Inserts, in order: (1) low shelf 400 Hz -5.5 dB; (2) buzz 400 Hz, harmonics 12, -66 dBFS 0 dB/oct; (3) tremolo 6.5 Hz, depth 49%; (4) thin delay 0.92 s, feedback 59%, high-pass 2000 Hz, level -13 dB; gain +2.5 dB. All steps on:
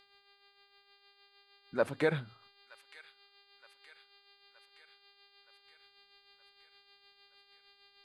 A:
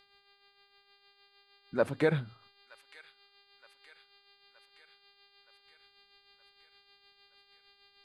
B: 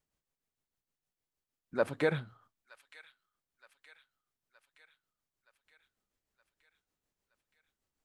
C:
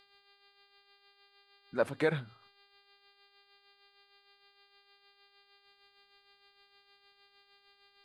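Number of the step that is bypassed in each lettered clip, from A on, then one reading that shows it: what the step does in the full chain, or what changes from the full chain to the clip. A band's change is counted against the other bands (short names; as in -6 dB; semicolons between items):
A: 1, 125 Hz band +4.0 dB; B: 2, 4 kHz band -2.5 dB; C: 4, echo-to-direct -16.0 dB to none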